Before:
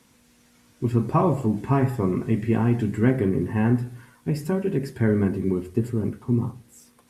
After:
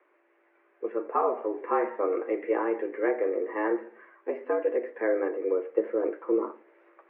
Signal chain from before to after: mistuned SSB +100 Hz 290–2100 Hz; gain riding 0.5 s

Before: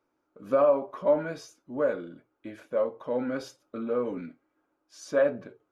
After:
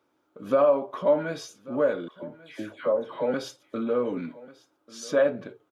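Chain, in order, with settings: 2.08–3.34 s: phase dispersion lows, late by 144 ms, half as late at 1.4 kHz; in parallel at -1 dB: compression, threshold -33 dBFS, peak gain reduction 15 dB; on the sum: high-pass 71 Hz; peaking EQ 3.4 kHz +7 dB 0.41 oct; delay 1141 ms -20 dB

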